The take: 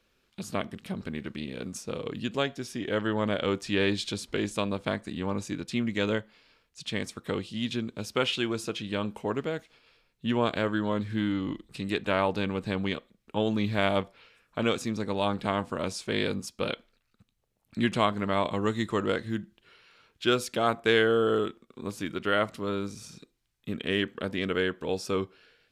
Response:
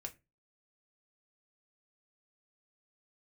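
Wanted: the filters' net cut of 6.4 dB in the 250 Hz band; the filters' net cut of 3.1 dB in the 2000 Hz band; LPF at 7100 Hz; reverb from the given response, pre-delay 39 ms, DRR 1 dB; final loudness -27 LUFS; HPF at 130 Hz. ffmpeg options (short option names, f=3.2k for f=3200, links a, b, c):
-filter_complex "[0:a]highpass=130,lowpass=7.1k,equalizer=f=250:t=o:g=-8,equalizer=f=2k:t=o:g=-4,asplit=2[a][b];[1:a]atrim=start_sample=2205,adelay=39[c];[b][c]afir=irnorm=-1:irlink=0,volume=2.5dB[d];[a][d]amix=inputs=2:normalize=0,volume=3.5dB"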